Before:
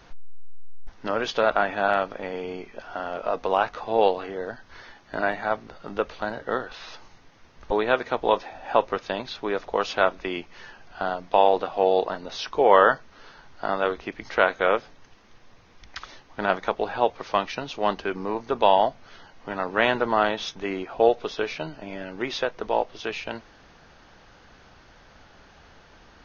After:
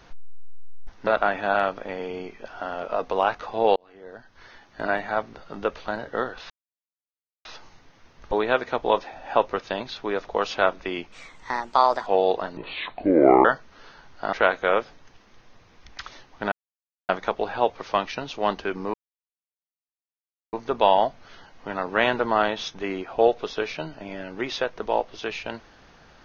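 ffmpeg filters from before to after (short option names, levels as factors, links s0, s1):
-filter_complex "[0:a]asplit=11[s0][s1][s2][s3][s4][s5][s6][s7][s8][s9][s10];[s0]atrim=end=1.072[s11];[s1]atrim=start=1.408:end=4.1,asetpts=PTS-STARTPTS,afade=t=out:st=2.688:d=0.004:c=hsin[s12];[s2]atrim=start=4.1:end=6.84,asetpts=PTS-STARTPTS,afade=t=in:d=1.06,afade=t=out:st=2.736:d=0.004:c=hsin,apad=pad_dur=0.95[s13];[s3]atrim=start=6.84:end=10.514,asetpts=PTS-STARTPTS,afade=t=in:d=0.004:c=hsin[s14];[s4]atrim=start=10.51:end=11.75,asetpts=PTS-STARTPTS,asetrate=57771,aresample=44100[s15];[s5]atrim=start=11.746:end=12.254[s16];[s6]atrim=start=12.25:end=12.85,asetpts=PTS-STARTPTS,asetrate=29988,aresample=44100[s17];[s7]atrim=start=12.846:end=13.732[s18];[s8]atrim=start=14.298:end=16.49,asetpts=PTS-STARTPTS,afade=t=out:st=2.188:d=0.004:c=hsin,apad=pad_dur=0.57[s19];[s9]atrim=start=16.49:end=18.34,asetpts=PTS-STARTPTS,afade=t=in:d=0.004:c=hsin,afade=t=out:st=1.846:d=0.004:c=hsin,apad=pad_dur=1.59[s20];[s10]atrim=start=18.34,asetpts=PTS-STARTPTS,afade=t=in:d=0.004:c=hsin[s21];[s12][s13][s14]concat=n=3:v=0:a=1[s22];[s11][s22]acrossfade=d=0.004:c1=hsin:c2=hsin[s23];[s23][s15]acrossfade=d=0.004:c1=hsin:c2=hsin[s24];[s24][s16]acrossfade=d=0.004:c1=hsin:c2=hsin[s25];[s25][s17]acrossfade=d=0.004:c1=hsin:c2=hsin[s26];[s26][s18]acrossfade=d=0.004:c1=hsin:c2=hsin[s27];[s19][s20][s21]concat=n=3:v=0:a=1[s28];[s27][s28]acrossfade=d=0.004:c1=hsin:c2=hsin"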